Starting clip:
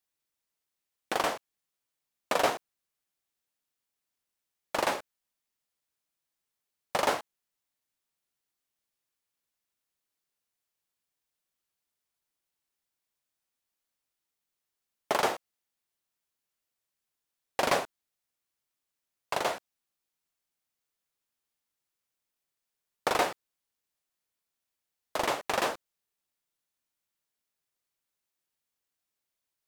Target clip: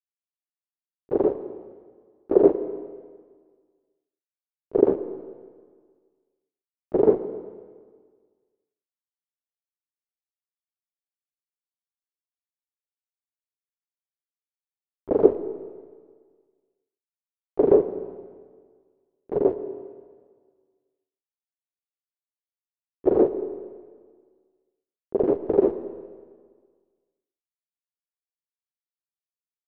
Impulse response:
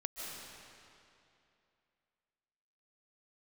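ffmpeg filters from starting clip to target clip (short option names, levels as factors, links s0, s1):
-filter_complex "[0:a]agate=range=0.0126:threshold=0.01:ratio=16:detection=peak,asplit=4[s0][s1][s2][s3];[s1]asetrate=22050,aresample=44100,atempo=2,volume=0.316[s4];[s2]asetrate=33038,aresample=44100,atempo=1.33484,volume=0.891[s5];[s3]asetrate=66075,aresample=44100,atempo=0.66742,volume=0.447[s6];[s0][s4][s5][s6]amix=inputs=4:normalize=0,aeval=exprs='val(0)*gte(abs(val(0)),0.0501)':c=same,lowpass=f=400:t=q:w=4.9,asplit=2[s7][s8];[1:a]atrim=start_sample=2205,asetrate=70560,aresample=44100[s9];[s8][s9]afir=irnorm=-1:irlink=0,volume=0.562[s10];[s7][s10]amix=inputs=2:normalize=0,volume=1.12"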